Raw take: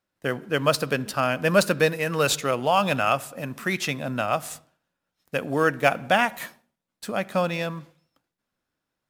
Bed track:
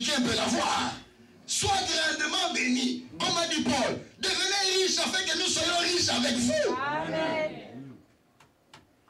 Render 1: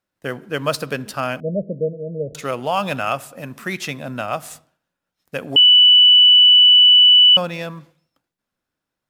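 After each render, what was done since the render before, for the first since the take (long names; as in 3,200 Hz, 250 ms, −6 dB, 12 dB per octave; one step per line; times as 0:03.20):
0:01.40–0:02.35: Chebyshev low-pass with heavy ripple 670 Hz, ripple 6 dB
0:05.56–0:07.37: beep over 2,970 Hz −6.5 dBFS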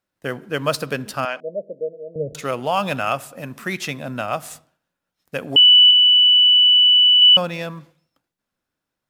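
0:01.25–0:02.16: band-pass filter 540–5,500 Hz
0:05.90–0:07.22: comb filter 7.3 ms, depth 98%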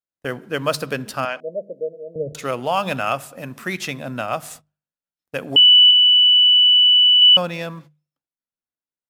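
noise gate −41 dBFS, range −20 dB
mains-hum notches 50/100/150/200 Hz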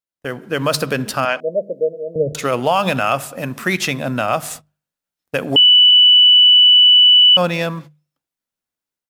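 brickwall limiter −13.5 dBFS, peak gain reduction 7 dB
automatic gain control gain up to 8 dB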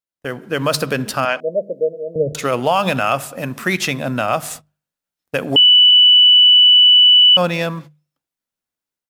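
no processing that can be heard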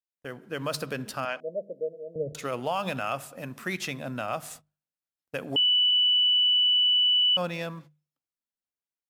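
level −13 dB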